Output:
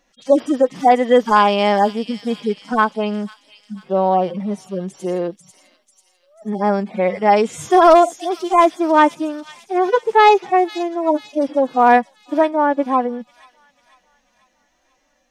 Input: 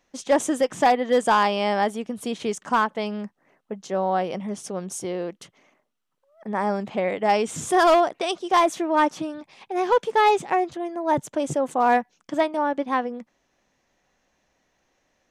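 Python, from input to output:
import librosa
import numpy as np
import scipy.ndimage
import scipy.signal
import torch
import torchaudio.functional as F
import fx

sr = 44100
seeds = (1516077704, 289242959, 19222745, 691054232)

y = fx.hpss_only(x, sr, part='harmonic')
y = fx.echo_wet_highpass(y, sr, ms=492, feedback_pct=48, hz=4900.0, wet_db=-3.0)
y = F.gain(torch.from_numpy(y), 7.5).numpy()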